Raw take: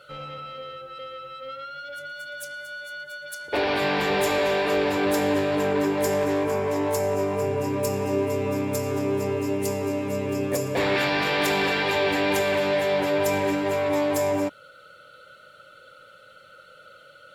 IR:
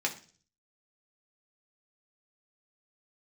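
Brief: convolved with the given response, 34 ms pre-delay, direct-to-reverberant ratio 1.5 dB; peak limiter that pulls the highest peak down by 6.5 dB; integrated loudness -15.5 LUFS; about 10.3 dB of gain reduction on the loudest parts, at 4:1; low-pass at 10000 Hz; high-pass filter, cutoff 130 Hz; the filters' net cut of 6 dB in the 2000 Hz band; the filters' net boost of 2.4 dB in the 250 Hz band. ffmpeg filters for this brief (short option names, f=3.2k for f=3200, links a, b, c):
-filter_complex "[0:a]highpass=130,lowpass=10k,equalizer=f=250:t=o:g=3.5,equalizer=f=2k:t=o:g=-8,acompressor=threshold=-32dB:ratio=4,alimiter=level_in=3dB:limit=-24dB:level=0:latency=1,volume=-3dB,asplit=2[a][b];[1:a]atrim=start_sample=2205,adelay=34[c];[b][c]afir=irnorm=-1:irlink=0,volume=-8dB[d];[a][d]amix=inputs=2:normalize=0,volume=17dB"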